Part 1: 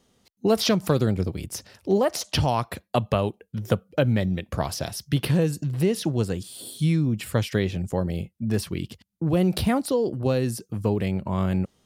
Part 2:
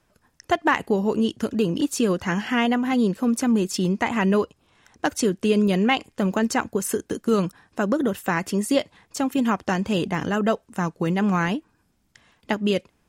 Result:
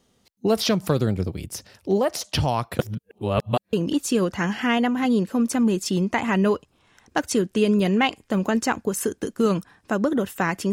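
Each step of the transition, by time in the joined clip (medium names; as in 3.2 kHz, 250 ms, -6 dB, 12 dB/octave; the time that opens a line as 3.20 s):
part 1
2.79–3.73 s: reverse
3.73 s: go over to part 2 from 1.61 s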